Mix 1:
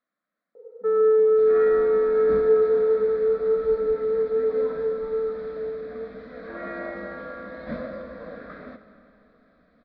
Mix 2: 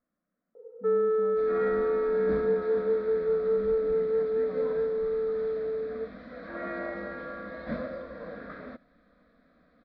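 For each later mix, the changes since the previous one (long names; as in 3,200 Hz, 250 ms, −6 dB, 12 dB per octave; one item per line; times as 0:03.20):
speech: add spectral tilt −4.5 dB per octave
reverb: off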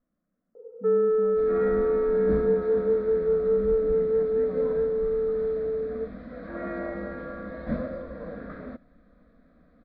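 master: add spectral tilt −2.5 dB per octave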